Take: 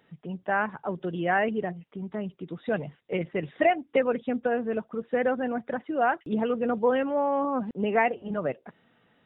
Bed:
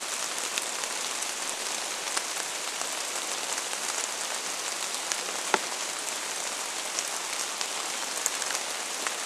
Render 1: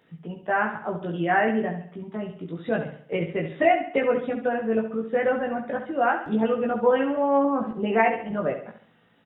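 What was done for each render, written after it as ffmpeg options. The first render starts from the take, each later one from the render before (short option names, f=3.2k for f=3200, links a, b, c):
-filter_complex "[0:a]asplit=2[a][b];[b]adelay=18,volume=-2dB[c];[a][c]amix=inputs=2:normalize=0,aecho=1:1:68|136|204|272|340:0.355|0.156|0.0687|0.0302|0.0133"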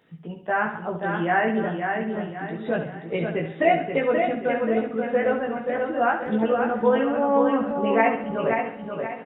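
-af "aecho=1:1:530|1060|1590|2120|2650:0.562|0.219|0.0855|0.0334|0.013"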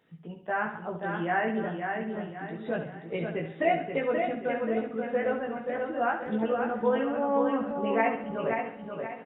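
-af "volume=-6dB"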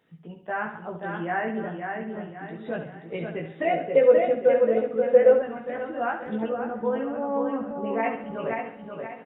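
-filter_complex "[0:a]asettb=1/sr,asplit=3[a][b][c];[a]atrim=end=1.184[d];[b]atrim=start=1.18:end=2.43,asetpts=PTS-STARTPTS,afade=t=in:d=0.004:c=qsin,afade=t=out:st=1.246:d=0.004:c=qsin,lowpass=3k[e];[c]atrim=start=2.426[f];[d][e]acrossfade=d=0.004:c1=hsin:c2=qsin[g];[g][f]acrossfade=d=0.004:c1=qsin:c2=hsin,asettb=1/sr,asplit=3[h][i][j];[h]atrim=end=3.724[k];[i]atrim=start=3.72:end=5.42,asetpts=PTS-STARTPTS,afade=t=in:d=0.004:c=qsin,afade=t=out:st=1.696:d=0.004:c=qsin,equalizer=f=520:t=o:w=0.35:g=15[l];[j]atrim=start=5.416[m];[k][l]acrossfade=d=0.004:c1=hsin:c2=qsin[n];[n][m]acrossfade=d=0.004:c1=qsin:c2=hsin,asettb=1/sr,asplit=3[o][p][q];[o]atrim=end=6.494[r];[p]atrim=start=6.49:end=8.03,asetpts=PTS-STARTPTS,afade=t=in:d=0.004:c=qsin,afade=t=out:st=1.536:d=0.004:c=qsin,highshelf=f=2.1k:g=-11[s];[q]atrim=start=8.026[t];[r][s]acrossfade=d=0.004:c1=hsin:c2=qsin[u];[u][t]acrossfade=d=0.004:c1=qsin:c2=hsin"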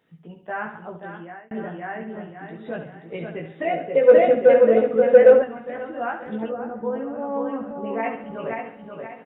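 -filter_complex "[0:a]asplit=3[a][b][c];[a]afade=t=out:st=4.07:d=0.02[d];[b]acontrast=69,afade=t=in:st=4.07:d=0.02,afade=t=out:st=5.43:d=0.02[e];[c]afade=t=in:st=5.43:d=0.02[f];[d][e][f]amix=inputs=3:normalize=0,asettb=1/sr,asplit=3[g][h][i];[g]atrim=end=6.514[j];[h]atrim=start=6.51:end=7.19,asetpts=PTS-STARTPTS,afade=t=in:d=0.004:c=qsin,afade=t=out:st=0.676:d=0.004:c=qsin,lowpass=f=1.3k:p=1[k];[i]atrim=start=7.186[l];[j][k]acrossfade=d=0.004:c1=hsin:c2=qsin[m];[m][l]acrossfade=d=0.004:c1=qsin:c2=hsin,asplit=2[n][o];[n]atrim=end=1.51,asetpts=PTS-STARTPTS,afade=t=out:st=0.83:d=0.68[p];[o]atrim=start=1.51,asetpts=PTS-STARTPTS,afade=t=in:d=0.004:c=hsin[q];[p][q]concat=n=2:v=0:a=1"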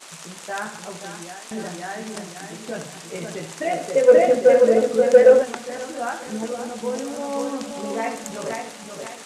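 -filter_complex "[1:a]volume=-8.5dB[a];[0:a][a]amix=inputs=2:normalize=0"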